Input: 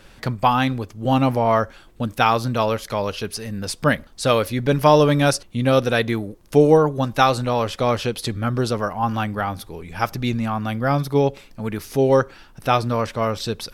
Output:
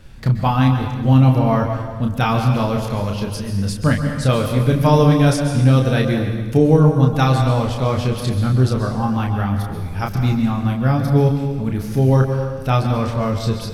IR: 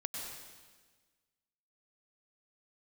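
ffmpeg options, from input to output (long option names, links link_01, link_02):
-filter_complex "[0:a]bass=frequency=250:gain=13,treble=frequency=4000:gain=1,asplit=2[link_01][link_02];[1:a]atrim=start_sample=2205,adelay=31[link_03];[link_02][link_03]afir=irnorm=-1:irlink=0,volume=-2dB[link_04];[link_01][link_04]amix=inputs=2:normalize=0,volume=-4.5dB"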